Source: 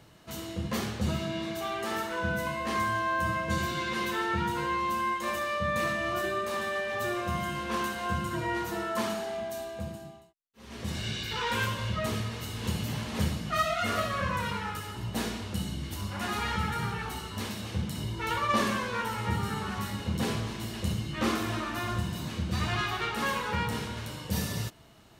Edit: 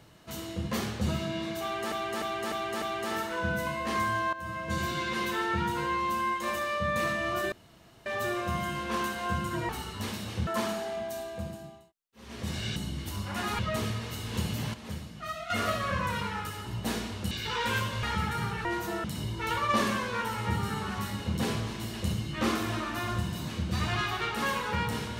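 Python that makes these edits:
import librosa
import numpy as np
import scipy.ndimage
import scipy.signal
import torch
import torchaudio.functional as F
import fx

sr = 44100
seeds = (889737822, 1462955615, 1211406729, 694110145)

y = fx.edit(x, sr, fx.repeat(start_s=1.62, length_s=0.3, count=5),
    fx.fade_in_from(start_s=3.13, length_s=0.56, floor_db=-14.5),
    fx.room_tone_fill(start_s=6.32, length_s=0.54),
    fx.swap(start_s=8.49, length_s=0.39, other_s=17.06, other_length_s=0.78),
    fx.swap(start_s=11.17, length_s=0.72, other_s=15.61, other_length_s=0.83),
    fx.clip_gain(start_s=13.04, length_s=0.76, db=-9.5), tone=tone)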